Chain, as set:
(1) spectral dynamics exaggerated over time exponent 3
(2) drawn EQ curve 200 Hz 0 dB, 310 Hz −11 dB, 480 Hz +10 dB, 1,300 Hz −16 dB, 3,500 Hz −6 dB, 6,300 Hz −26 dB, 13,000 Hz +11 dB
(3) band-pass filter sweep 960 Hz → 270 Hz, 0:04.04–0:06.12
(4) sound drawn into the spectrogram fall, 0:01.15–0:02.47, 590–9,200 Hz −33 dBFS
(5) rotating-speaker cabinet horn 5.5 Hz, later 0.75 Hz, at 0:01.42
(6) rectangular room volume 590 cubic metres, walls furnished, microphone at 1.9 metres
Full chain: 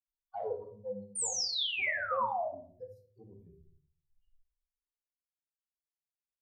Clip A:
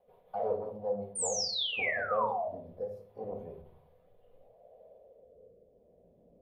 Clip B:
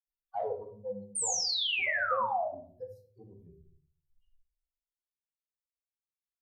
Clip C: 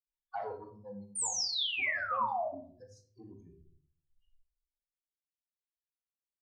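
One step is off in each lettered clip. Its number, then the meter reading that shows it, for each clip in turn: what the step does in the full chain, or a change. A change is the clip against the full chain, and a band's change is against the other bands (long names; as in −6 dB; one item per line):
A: 1, 250 Hz band +5.5 dB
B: 5, change in integrated loudness +2.5 LU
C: 2, 500 Hz band −3.5 dB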